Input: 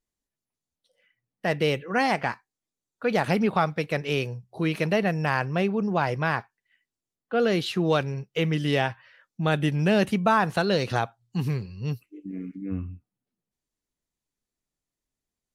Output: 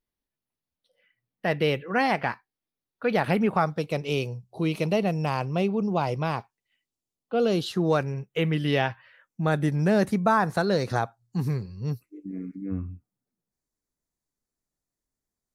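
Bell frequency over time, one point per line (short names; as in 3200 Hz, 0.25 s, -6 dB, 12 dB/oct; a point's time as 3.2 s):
bell -14.5 dB 0.52 oct
3.24 s 7200 Hz
3.9 s 1700 Hz
7.43 s 1700 Hz
8.86 s 9000 Hz
9.5 s 2900 Hz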